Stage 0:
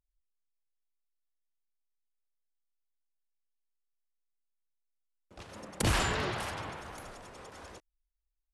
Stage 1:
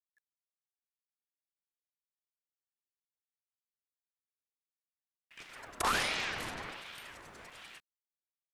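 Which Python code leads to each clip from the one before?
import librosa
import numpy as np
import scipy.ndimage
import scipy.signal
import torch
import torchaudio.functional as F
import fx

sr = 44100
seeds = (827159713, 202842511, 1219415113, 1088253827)

y = fx.quant_dither(x, sr, seeds[0], bits=12, dither='none')
y = fx.ring_lfo(y, sr, carrier_hz=1600.0, swing_pct=50, hz=1.3)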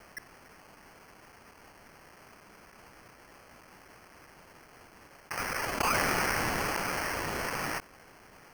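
y = fx.sample_hold(x, sr, seeds[1], rate_hz=3700.0, jitter_pct=0)
y = fx.env_flatten(y, sr, amount_pct=70)
y = y * 10.0 ** (1.5 / 20.0)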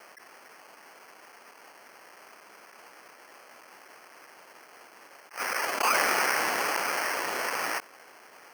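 y = scipy.signal.sosfilt(scipy.signal.butter(2, 420.0, 'highpass', fs=sr, output='sos'), x)
y = fx.attack_slew(y, sr, db_per_s=230.0)
y = y * 10.0 ** (4.0 / 20.0)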